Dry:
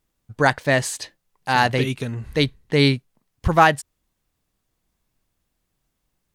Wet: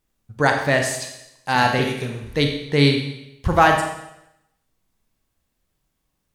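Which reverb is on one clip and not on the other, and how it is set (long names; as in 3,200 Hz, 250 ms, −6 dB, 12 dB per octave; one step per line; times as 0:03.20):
four-comb reverb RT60 0.85 s, combs from 28 ms, DRR 3 dB
level −1 dB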